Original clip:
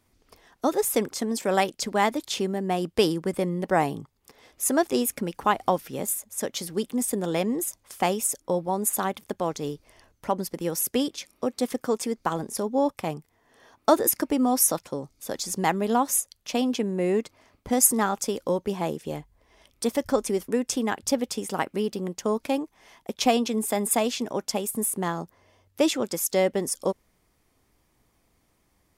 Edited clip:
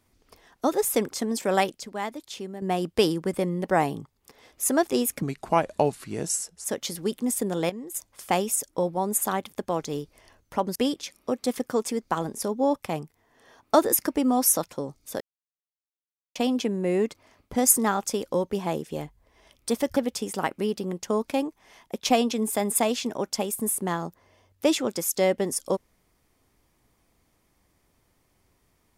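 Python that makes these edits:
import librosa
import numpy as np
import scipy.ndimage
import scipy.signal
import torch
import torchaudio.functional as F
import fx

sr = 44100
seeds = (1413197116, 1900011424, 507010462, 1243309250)

y = fx.edit(x, sr, fx.clip_gain(start_s=1.79, length_s=0.83, db=-9.0),
    fx.speed_span(start_s=5.22, length_s=1.14, speed=0.8),
    fx.clip_gain(start_s=7.41, length_s=0.25, db=-11.0),
    fx.cut(start_s=10.47, length_s=0.43),
    fx.silence(start_s=15.35, length_s=1.15),
    fx.cut(start_s=20.11, length_s=1.01), tone=tone)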